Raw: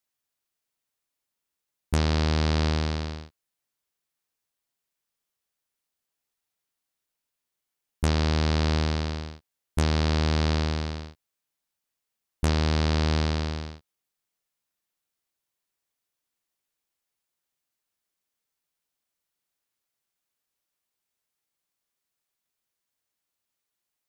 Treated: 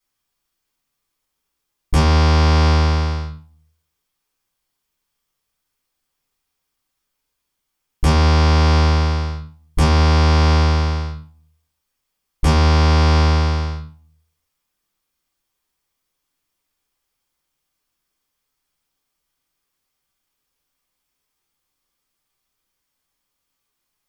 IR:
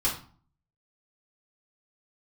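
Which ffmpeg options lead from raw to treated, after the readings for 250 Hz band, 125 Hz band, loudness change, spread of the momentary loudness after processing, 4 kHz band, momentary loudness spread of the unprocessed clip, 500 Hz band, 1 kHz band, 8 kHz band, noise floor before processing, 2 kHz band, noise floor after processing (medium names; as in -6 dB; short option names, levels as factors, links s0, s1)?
+7.0 dB, +11.0 dB, +10.0 dB, 13 LU, +7.5 dB, 12 LU, +8.0 dB, +12.5 dB, +7.0 dB, -85 dBFS, +8.5 dB, -77 dBFS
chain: -filter_complex "[1:a]atrim=start_sample=2205[s0];[0:a][s0]afir=irnorm=-1:irlink=0"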